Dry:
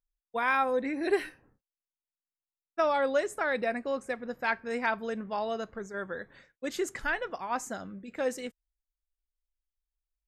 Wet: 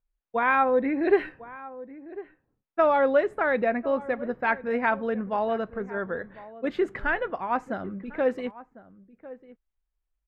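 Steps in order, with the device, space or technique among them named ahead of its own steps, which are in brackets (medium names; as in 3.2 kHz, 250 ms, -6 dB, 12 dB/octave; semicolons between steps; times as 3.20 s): shout across a valley (distance through air 480 m; echo from a far wall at 180 m, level -17 dB); trim +7.5 dB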